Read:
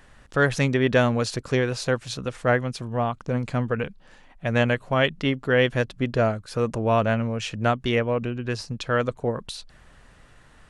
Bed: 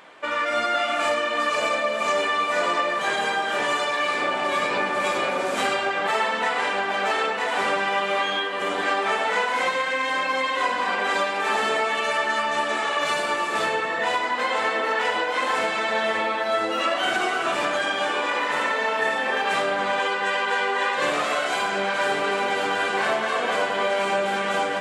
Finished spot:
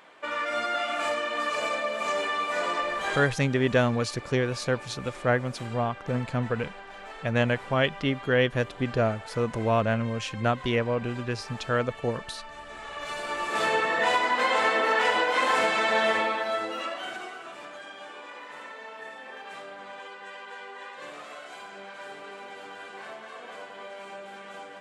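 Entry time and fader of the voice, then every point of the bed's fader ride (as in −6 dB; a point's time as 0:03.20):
2.80 s, −3.0 dB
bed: 0:03.16 −5.5 dB
0:03.36 −19.5 dB
0:12.62 −19.5 dB
0:13.75 0 dB
0:16.10 0 dB
0:17.52 −18.5 dB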